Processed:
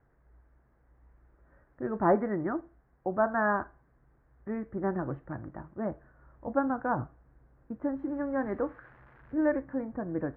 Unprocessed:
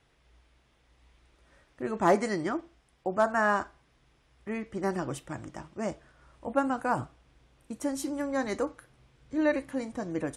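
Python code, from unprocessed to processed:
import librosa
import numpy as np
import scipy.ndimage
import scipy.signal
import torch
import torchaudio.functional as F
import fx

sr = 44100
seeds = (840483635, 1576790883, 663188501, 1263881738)

y = fx.crossing_spikes(x, sr, level_db=-27.5, at=(8.09, 9.34))
y = scipy.signal.sosfilt(scipy.signal.cheby1(4, 1.0, 1700.0, 'lowpass', fs=sr, output='sos'), y)
y = fx.low_shelf(y, sr, hz=270.0, db=5.5)
y = F.gain(torch.from_numpy(y), -2.0).numpy()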